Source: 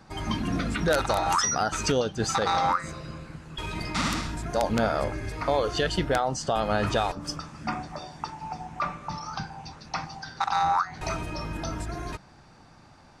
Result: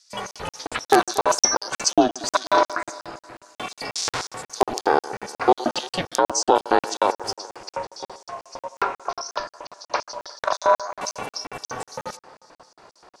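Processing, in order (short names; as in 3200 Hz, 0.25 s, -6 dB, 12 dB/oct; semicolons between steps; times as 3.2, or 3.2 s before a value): LFO high-pass square 3.8 Hz 530–5600 Hz; band-limited delay 0.117 s, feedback 69%, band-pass 930 Hz, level -16 dB; ring modulator 190 Hz; crackling interface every 0.18 s, samples 2048, zero, from 0.31; gain +7.5 dB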